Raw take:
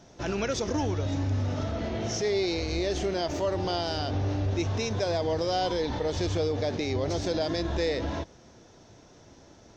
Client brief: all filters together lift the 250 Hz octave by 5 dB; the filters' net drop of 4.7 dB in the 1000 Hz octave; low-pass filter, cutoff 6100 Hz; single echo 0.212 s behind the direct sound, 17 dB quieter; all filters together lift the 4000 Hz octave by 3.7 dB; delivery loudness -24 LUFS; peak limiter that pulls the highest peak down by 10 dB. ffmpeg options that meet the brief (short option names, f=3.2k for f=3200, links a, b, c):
-af "lowpass=6.1k,equalizer=f=250:t=o:g=7.5,equalizer=f=1k:t=o:g=-8.5,equalizer=f=4k:t=o:g=6,alimiter=level_in=1dB:limit=-24dB:level=0:latency=1,volume=-1dB,aecho=1:1:212:0.141,volume=9dB"